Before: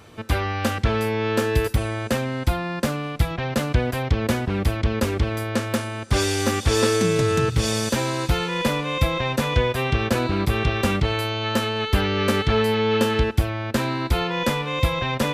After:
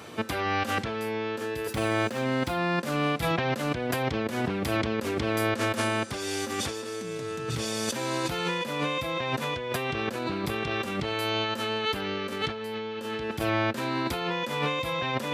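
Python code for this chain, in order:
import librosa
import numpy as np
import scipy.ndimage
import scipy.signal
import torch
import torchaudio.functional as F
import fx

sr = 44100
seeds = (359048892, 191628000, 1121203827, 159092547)

y = fx.median_filter(x, sr, points=3, at=(1.71, 2.59))
y = scipy.signal.sosfilt(scipy.signal.butter(2, 170.0, 'highpass', fs=sr, output='sos'), y)
y = fx.over_compress(y, sr, threshold_db=-30.0, ratio=-1.0)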